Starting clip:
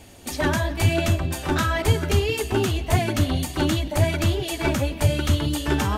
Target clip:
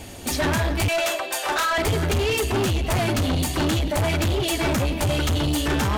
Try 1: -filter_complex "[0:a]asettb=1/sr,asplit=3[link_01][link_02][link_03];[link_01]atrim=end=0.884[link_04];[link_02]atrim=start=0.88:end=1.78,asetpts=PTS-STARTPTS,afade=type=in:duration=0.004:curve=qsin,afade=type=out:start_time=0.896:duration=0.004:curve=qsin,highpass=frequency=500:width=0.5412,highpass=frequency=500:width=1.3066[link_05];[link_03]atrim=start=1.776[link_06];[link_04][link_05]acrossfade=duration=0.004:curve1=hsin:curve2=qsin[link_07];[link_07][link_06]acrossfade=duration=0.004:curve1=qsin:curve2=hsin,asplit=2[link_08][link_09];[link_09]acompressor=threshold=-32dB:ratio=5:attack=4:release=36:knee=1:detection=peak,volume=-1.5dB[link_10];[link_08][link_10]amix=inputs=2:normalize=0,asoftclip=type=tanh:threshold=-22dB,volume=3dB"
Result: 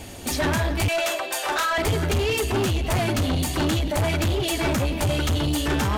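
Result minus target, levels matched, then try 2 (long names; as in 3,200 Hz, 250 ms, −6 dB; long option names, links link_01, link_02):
downward compressor: peak gain reduction +7 dB
-filter_complex "[0:a]asettb=1/sr,asplit=3[link_01][link_02][link_03];[link_01]atrim=end=0.884[link_04];[link_02]atrim=start=0.88:end=1.78,asetpts=PTS-STARTPTS,afade=type=in:duration=0.004:curve=qsin,afade=type=out:start_time=0.896:duration=0.004:curve=qsin,highpass=frequency=500:width=0.5412,highpass=frequency=500:width=1.3066[link_05];[link_03]atrim=start=1.776[link_06];[link_04][link_05]acrossfade=duration=0.004:curve1=hsin:curve2=qsin[link_07];[link_07][link_06]acrossfade=duration=0.004:curve1=qsin:curve2=hsin,asplit=2[link_08][link_09];[link_09]acompressor=threshold=-23dB:ratio=5:attack=4:release=36:knee=1:detection=peak,volume=-1.5dB[link_10];[link_08][link_10]amix=inputs=2:normalize=0,asoftclip=type=tanh:threshold=-22dB,volume=3dB"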